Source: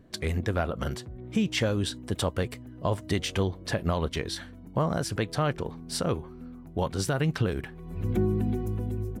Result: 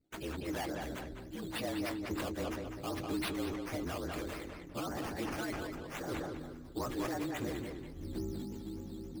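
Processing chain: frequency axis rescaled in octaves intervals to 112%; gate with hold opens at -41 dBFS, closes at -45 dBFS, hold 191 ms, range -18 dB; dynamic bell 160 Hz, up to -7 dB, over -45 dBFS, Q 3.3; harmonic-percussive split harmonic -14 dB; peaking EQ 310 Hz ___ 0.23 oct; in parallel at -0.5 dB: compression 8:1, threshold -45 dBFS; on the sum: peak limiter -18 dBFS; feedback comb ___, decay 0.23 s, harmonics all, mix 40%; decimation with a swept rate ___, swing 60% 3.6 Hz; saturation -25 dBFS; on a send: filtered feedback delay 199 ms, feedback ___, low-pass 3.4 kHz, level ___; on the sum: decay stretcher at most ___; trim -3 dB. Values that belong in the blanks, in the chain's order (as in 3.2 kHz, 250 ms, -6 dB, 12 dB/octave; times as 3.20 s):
+14 dB, 400 Hz, 9×, 33%, -5 dB, 25 dB/s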